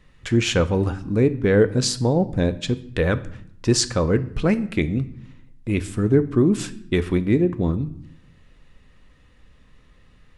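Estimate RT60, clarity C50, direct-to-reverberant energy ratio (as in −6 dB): 0.70 s, 16.5 dB, 11.0 dB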